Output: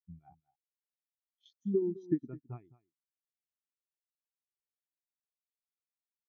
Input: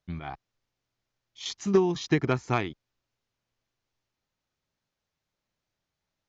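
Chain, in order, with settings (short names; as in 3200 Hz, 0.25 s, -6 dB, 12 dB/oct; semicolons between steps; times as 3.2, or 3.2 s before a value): G.711 law mismatch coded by A; 1.82–2.28 fifteen-band EQ 250 Hz +11 dB, 1600 Hz +6 dB, 6300 Hz +7 dB; compressor 2.5:1, threshold -35 dBFS, peak gain reduction 14 dB; echo 0.211 s -8 dB; spectral expander 2.5:1; gain +1 dB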